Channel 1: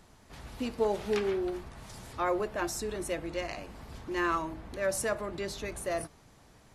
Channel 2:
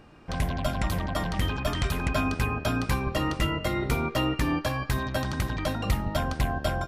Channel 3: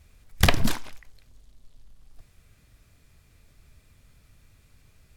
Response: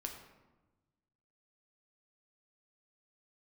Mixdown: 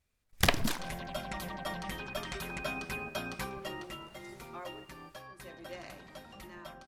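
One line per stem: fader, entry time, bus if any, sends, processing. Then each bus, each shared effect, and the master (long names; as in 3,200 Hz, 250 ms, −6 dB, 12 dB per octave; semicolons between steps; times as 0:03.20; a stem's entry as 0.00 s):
−12.5 dB, 2.35 s, send −3 dB, amplitude tremolo 0.55 Hz, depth 100%
0:03.41 −8 dB → 0:04.14 −19 dB, 0.50 s, no send, low-shelf EQ 360 Hz −4 dB; comb filter 5.3 ms, depth 66%
−5.0 dB, 0.00 s, send −18 dB, no processing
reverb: on, RT60 1.1 s, pre-delay 5 ms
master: low-shelf EQ 130 Hz −9.5 dB; noise gate −57 dBFS, range −14 dB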